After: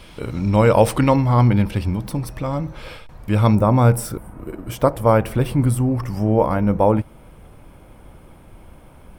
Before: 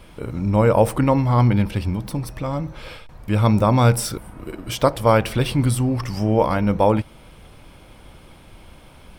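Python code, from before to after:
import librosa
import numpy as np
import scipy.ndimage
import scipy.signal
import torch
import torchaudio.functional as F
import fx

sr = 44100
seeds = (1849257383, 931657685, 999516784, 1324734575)

y = fx.peak_eq(x, sr, hz=4100.0, db=fx.steps((0.0, 6.5), (1.16, -2.0), (3.55, -12.5)), octaves=1.9)
y = y * librosa.db_to_amplitude(1.5)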